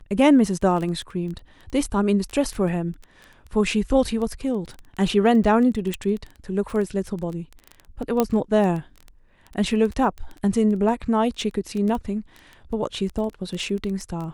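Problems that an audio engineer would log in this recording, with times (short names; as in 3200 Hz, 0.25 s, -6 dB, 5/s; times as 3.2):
crackle 11/s
5.94 pop
8.2 pop -6 dBFS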